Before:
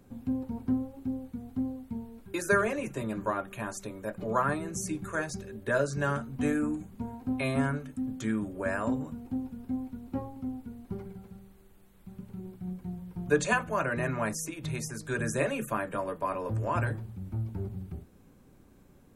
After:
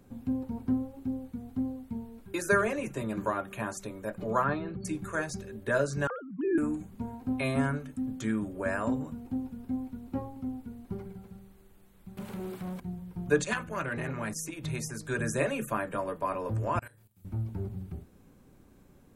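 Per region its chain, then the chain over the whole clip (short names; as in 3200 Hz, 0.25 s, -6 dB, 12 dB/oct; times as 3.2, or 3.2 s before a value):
3.17–3.77 HPF 47 Hz + three-band squash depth 40%
4.44–4.85 brick-wall FIR low-pass 4500 Hz + bell 2000 Hz -4.5 dB 0.26 oct
6.07–6.58 sine-wave speech + bell 2600 Hz -13.5 dB 1.3 oct
12.17–12.8 overdrive pedal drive 25 dB, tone 7700 Hz, clips at -28.5 dBFS + doubler 14 ms -12 dB
13.42–14.53 bell 730 Hz -7 dB 1 oct + core saturation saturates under 1000 Hz
16.79–17.25 pre-emphasis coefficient 0.9 + doubler 29 ms -2 dB + level quantiser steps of 15 dB
whole clip: dry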